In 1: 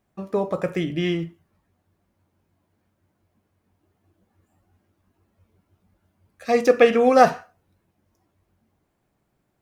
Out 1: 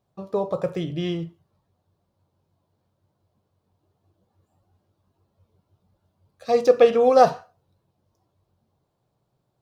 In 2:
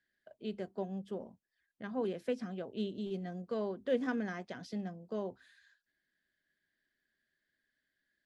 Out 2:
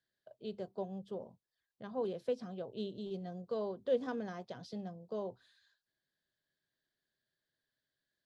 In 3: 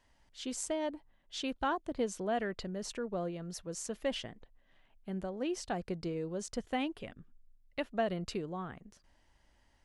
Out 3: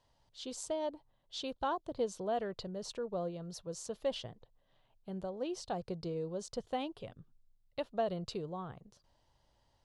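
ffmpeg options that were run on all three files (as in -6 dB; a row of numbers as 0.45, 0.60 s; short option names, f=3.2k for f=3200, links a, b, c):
-af "equalizer=f=125:t=o:w=1:g=11,equalizer=f=250:t=o:w=1:g=-3,equalizer=f=500:t=o:w=1:g=7,equalizer=f=1k:t=o:w=1:g=6,equalizer=f=2k:t=o:w=1:g=-7,equalizer=f=4k:t=o:w=1:g=9,volume=-7dB"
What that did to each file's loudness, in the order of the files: -0.5, -1.5, -2.0 LU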